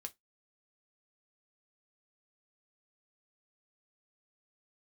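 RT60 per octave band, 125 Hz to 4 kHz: 0.15 s, 0.20 s, 0.15 s, 0.15 s, 0.15 s, 0.15 s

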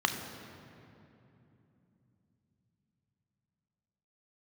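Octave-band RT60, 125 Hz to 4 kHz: 5.4 s, 4.9 s, 3.2 s, 2.7 s, 2.4 s, 1.8 s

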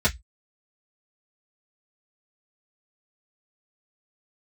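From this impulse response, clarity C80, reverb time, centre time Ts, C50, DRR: 35.5 dB, 0.10 s, 9 ms, 22.5 dB, -8.0 dB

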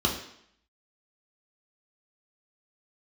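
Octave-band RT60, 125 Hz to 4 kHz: 0.55 s, 0.70 s, 0.70 s, 0.70 s, 0.70 s, 0.70 s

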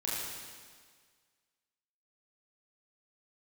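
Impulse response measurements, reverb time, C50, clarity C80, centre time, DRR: 1.7 s, -2.5 dB, -0.5 dB, 120 ms, -7.5 dB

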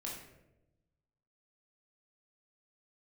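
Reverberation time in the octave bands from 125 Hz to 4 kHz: 1.6 s, 1.3 s, 1.1 s, 0.75 s, 0.70 s, 0.55 s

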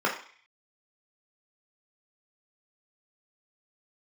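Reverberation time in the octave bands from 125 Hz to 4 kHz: 0.30 s, 0.40 s, 0.40 s, 0.50 s, 0.65 s, 0.55 s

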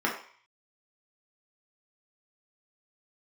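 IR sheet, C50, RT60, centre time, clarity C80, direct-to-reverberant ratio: 6.5 dB, 0.50 s, 27 ms, 10.5 dB, -3.5 dB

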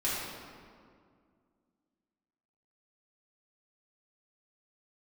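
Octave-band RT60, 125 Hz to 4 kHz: 2.4 s, 2.8 s, 2.2 s, 2.0 s, 1.6 s, 1.2 s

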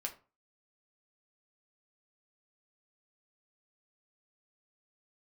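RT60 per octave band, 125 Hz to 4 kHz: 0.40 s, 0.35 s, 0.35 s, 0.35 s, 0.30 s, 0.20 s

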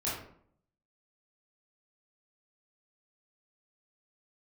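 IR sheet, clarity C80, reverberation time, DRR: 7.0 dB, 0.60 s, -9.0 dB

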